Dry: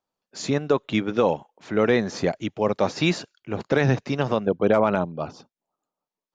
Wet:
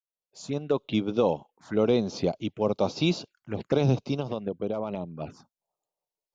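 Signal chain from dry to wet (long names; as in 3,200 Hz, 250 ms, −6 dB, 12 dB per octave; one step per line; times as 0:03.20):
fade in at the beginning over 0.90 s
0:04.17–0:05.21: downward compressor 8 to 1, threshold −23 dBFS, peak gain reduction 9.5 dB
phaser swept by the level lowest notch 240 Hz, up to 1,800 Hz, full sweep at −23 dBFS
level −2 dB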